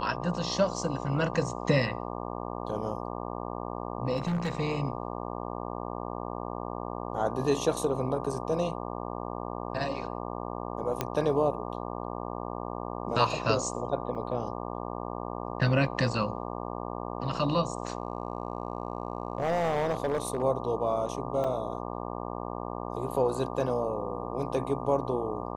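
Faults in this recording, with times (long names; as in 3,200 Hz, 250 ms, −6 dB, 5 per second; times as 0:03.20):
mains buzz 60 Hz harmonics 20 −36 dBFS
0:04.16–0:04.60: clipping −25.5 dBFS
0:11.01: click −13 dBFS
0:14.15: drop-out 4 ms
0:17.83–0:20.43: clipping −23 dBFS
0:21.44: drop-out 4.3 ms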